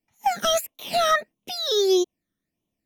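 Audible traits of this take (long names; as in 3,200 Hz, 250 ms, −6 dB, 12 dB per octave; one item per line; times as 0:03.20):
phaser sweep stages 12, 1.6 Hz, lowest notch 800–1,600 Hz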